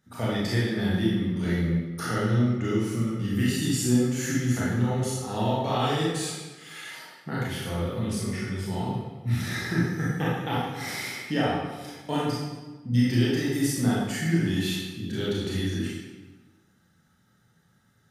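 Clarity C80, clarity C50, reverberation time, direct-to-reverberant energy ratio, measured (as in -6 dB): 1.5 dB, -2.0 dB, 1.2 s, -7.5 dB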